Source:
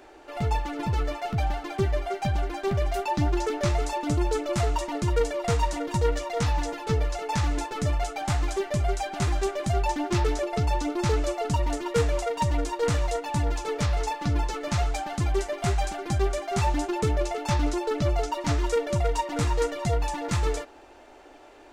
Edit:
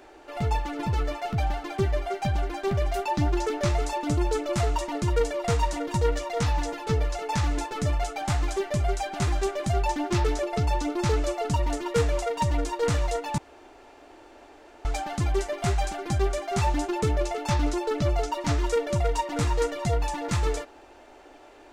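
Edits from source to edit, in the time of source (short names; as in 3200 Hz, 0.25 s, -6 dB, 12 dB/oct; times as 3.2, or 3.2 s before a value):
13.38–14.85 room tone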